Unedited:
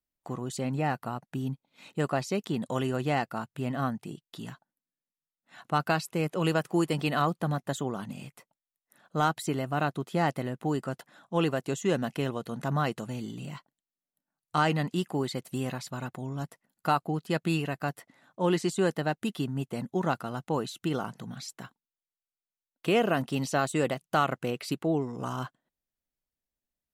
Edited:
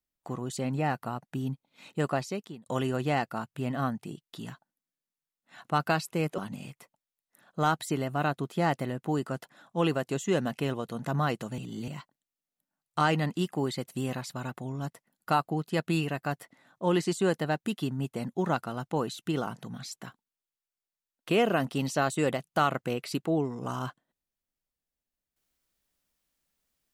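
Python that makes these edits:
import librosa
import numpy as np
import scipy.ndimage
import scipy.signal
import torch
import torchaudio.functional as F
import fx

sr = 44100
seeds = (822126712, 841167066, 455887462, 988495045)

y = fx.edit(x, sr, fx.fade_out_span(start_s=2.13, length_s=0.53),
    fx.cut(start_s=6.38, length_s=1.57),
    fx.reverse_span(start_s=13.15, length_s=0.3), tone=tone)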